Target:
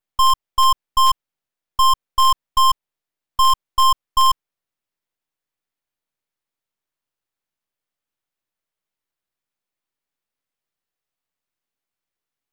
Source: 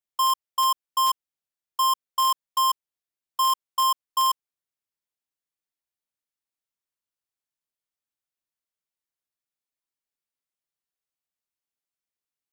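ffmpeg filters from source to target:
-filter_complex "[0:a]aeval=exprs='if(lt(val(0),0),0.251*val(0),val(0))':c=same,asplit=2[a][b];[b]adynamicsmooth=sensitivity=5.5:basefreq=4.9k,volume=-0.5dB[c];[a][c]amix=inputs=2:normalize=0,volume=5dB"

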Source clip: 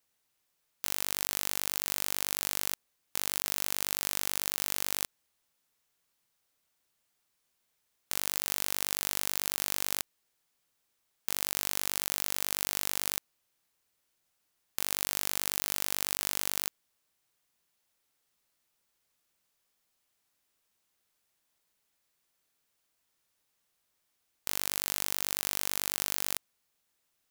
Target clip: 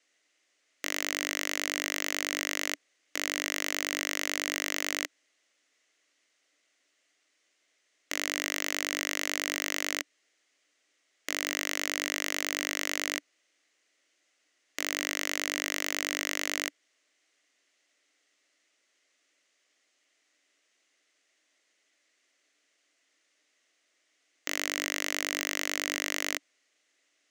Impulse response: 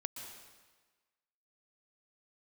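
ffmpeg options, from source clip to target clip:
-af "highpass=f=290:w=0.5412,highpass=f=290:w=1.3066,equalizer=f=290:t=q:w=4:g=9,equalizer=f=610:t=q:w=4:g=5,equalizer=f=910:t=q:w=4:g=-9,equalizer=f=2k:t=q:w=4:g=10,equalizer=f=2.9k:t=q:w=4:g=4,equalizer=f=6.4k:t=q:w=4:g=4,lowpass=f=7.7k:w=0.5412,lowpass=f=7.7k:w=1.3066,aeval=exprs='0.266*sin(PI/2*1.58*val(0)/0.266)':c=same,volume=-2dB"

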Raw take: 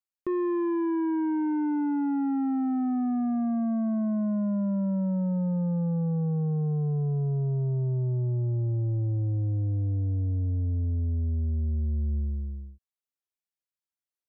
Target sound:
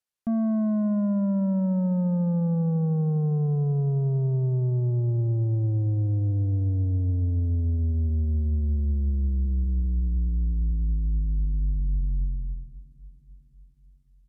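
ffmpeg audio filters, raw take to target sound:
-af "asetrate=27781,aresample=44100,atempo=1.5874,aecho=1:1:552|1104|1656|2208:0.0944|0.051|0.0275|0.0149,volume=3dB"

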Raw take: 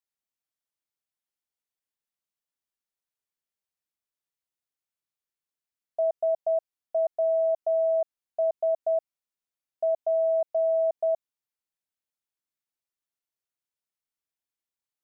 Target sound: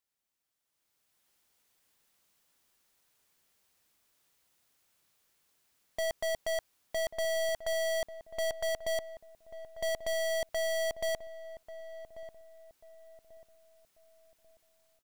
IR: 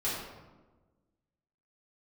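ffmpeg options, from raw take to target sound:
-filter_complex "[0:a]dynaudnorm=f=650:g=3:m=15dB,aeval=exprs='(tanh(63.1*val(0)+0.35)-tanh(0.35))/63.1':c=same,asplit=2[a][b];[b]adelay=1140,lowpass=f=830:p=1,volume=-11dB,asplit=2[c][d];[d]adelay=1140,lowpass=f=830:p=1,volume=0.41,asplit=2[e][f];[f]adelay=1140,lowpass=f=830:p=1,volume=0.41,asplit=2[g][h];[h]adelay=1140,lowpass=f=830:p=1,volume=0.41[i];[a][c][e][g][i]amix=inputs=5:normalize=0,volume=5dB"

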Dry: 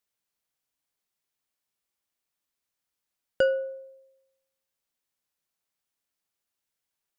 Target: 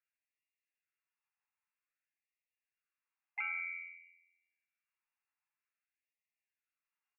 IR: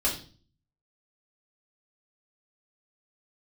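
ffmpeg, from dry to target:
-filter_complex "[0:a]asplit=3[a][b][c];[b]asetrate=37084,aresample=44100,atempo=1.18921,volume=-2dB[d];[c]asetrate=58866,aresample=44100,atempo=0.749154,volume=-10dB[e];[a][d][e]amix=inputs=3:normalize=0,alimiter=limit=-19dB:level=0:latency=1:release=169,asplit=2[f][g];[1:a]atrim=start_sample=2205,asetrate=26019,aresample=44100[h];[g][h]afir=irnorm=-1:irlink=0,volume=-18.5dB[i];[f][i]amix=inputs=2:normalize=0,acompressor=threshold=-33dB:ratio=2,lowpass=f=2.4k:t=q:w=0.5098,lowpass=f=2.4k:t=q:w=0.6013,lowpass=f=2.4k:t=q:w=0.9,lowpass=f=2.4k:t=q:w=2.563,afreqshift=-2800,afftfilt=real='re*gte(b*sr/1024,700*pow(1800/700,0.5+0.5*sin(2*PI*0.52*pts/sr)))':imag='im*gte(b*sr/1024,700*pow(1800/700,0.5+0.5*sin(2*PI*0.52*pts/sr)))':win_size=1024:overlap=0.75,volume=-6dB"

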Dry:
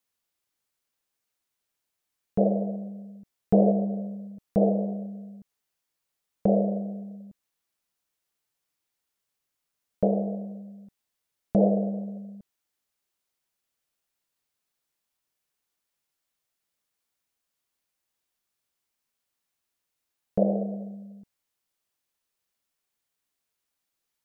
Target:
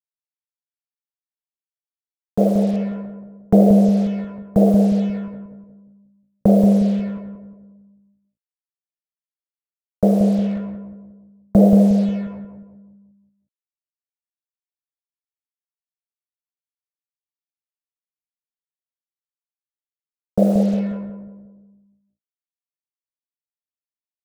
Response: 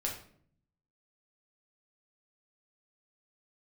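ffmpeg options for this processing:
-filter_complex "[0:a]afwtdn=0.02,agate=range=-33dB:threshold=-39dB:ratio=3:detection=peak,adynamicequalizer=threshold=0.00708:dfrequency=250:dqfactor=4.6:tfrequency=250:tqfactor=4.6:attack=5:release=100:ratio=0.375:range=3.5:mode=boostabove:tftype=bell,acrossover=split=170[a][b];[a]dynaudnorm=f=240:g=31:m=9dB[c];[c][b]amix=inputs=2:normalize=0,acrusher=bits=6:mix=0:aa=0.5,asplit=2[d][e];[e]adelay=179,lowpass=f=840:p=1,volume=-5dB,asplit=2[f][g];[g]adelay=179,lowpass=f=840:p=1,volume=0.51,asplit=2[h][i];[i]adelay=179,lowpass=f=840:p=1,volume=0.51,asplit=2[j][k];[k]adelay=179,lowpass=f=840:p=1,volume=0.51,asplit=2[l][m];[m]adelay=179,lowpass=f=840:p=1,volume=0.51,asplit=2[n][o];[o]adelay=179,lowpass=f=840:p=1,volume=0.51[p];[f][h][j][l][n][p]amix=inputs=6:normalize=0[q];[d][q]amix=inputs=2:normalize=0,volume=5dB"

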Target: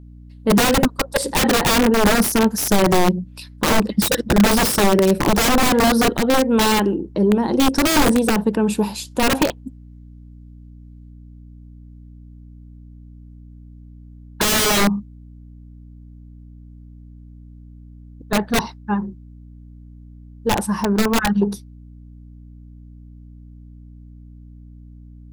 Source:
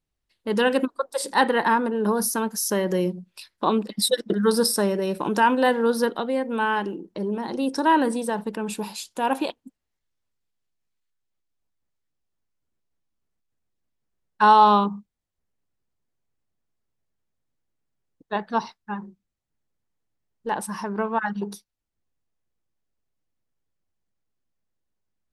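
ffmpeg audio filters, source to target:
-af "aeval=exprs='(mod(7.94*val(0)+1,2)-1)/7.94':c=same,tiltshelf=f=660:g=4.5,aeval=exprs='val(0)+0.00398*(sin(2*PI*60*n/s)+sin(2*PI*2*60*n/s)/2+sin(2*PI*3*60*n/s)/3+sin(2*PI*4*60*n/s)/4+sin(2*PI*5*60*n/s)/5)':c=same,volume=8.5dB"

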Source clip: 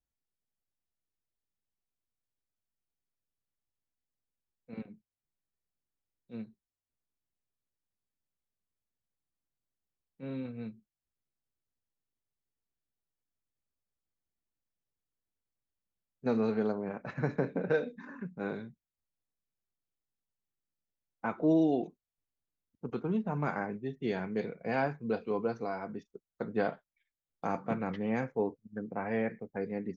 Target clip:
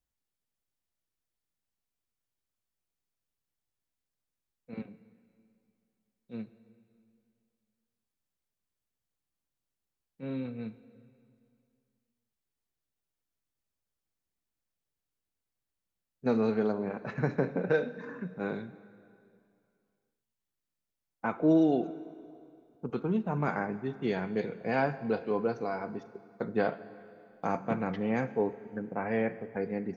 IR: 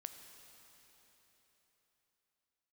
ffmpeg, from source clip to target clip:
-filter_complex "[0:a]asplit=2[a][b];[1:a]atrim=start_sample=2205,asetrate=70560,aresample=44100[c];[b][c]afir=irnorm=-1:irlink=0,volume=5.5dB[d];[a][d]amix=inputs=2:normalize=0,volume=-2dB"

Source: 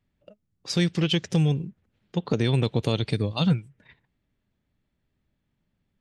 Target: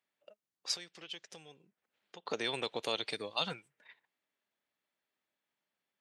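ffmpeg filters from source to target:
-filter_complex "[0:a]asettb=1/sr,asplit=3[a][b][c];[a]atrim=end=0.744[d];[b]atrim=start=0.74:end=2.26,asetpts=PTS-STARTPTS,afade=t=in:d=0.004:c=qsin,afade=t=out:st=1.516:d=0.004:c=qsin,acompressor=threshold=-40dB:ratio=3[e];[c]atrim=start=2.256[f];[d][e]acrossfade=d=0.004:c1=hsin:c2=qsin[g];[g][f]acrossfade=d=0.004:c1=qsin:c2=hsin,highpass=640,volume=-3dB"

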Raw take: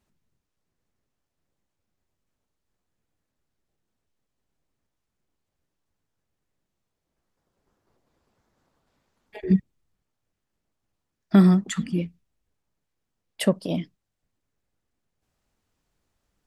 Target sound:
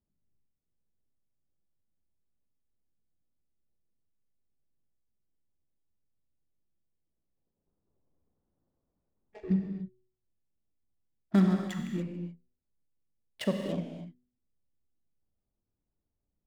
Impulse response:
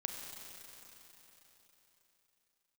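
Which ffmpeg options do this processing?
-filter_complex "[0:a]adynamicsmooth=sensitivity=6:basefreq=600,bandreject=f=123.7:t=h:w=4,bandreject=f=247.4:t=h:w=4,bandreject=f=371.1:t=h:w=4,bandreject=f=494.8:t=h:w=4[a];[1:a]atrim=start_sample=2205,afade=t=out:st=0.35:d=0.01,atrim=end_sample=15876[b];[a][b]afir=irnorm=-1:irlink=0,volume=-6.5dB"

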